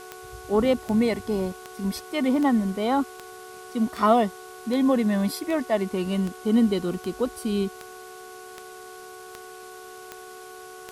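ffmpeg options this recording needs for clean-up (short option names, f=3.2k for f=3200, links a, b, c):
-af "adeclick=t=4,bandreject=f=369.1:t=h:w=4,bandreject=f=738.2:t=h:w=4,bandreject=f=1.1073k:t=h:w=4,bandreject=f=1.4764k:t=h:w=4,bandreject=f=440:w=30,afftdn=nr=26:nf=-43"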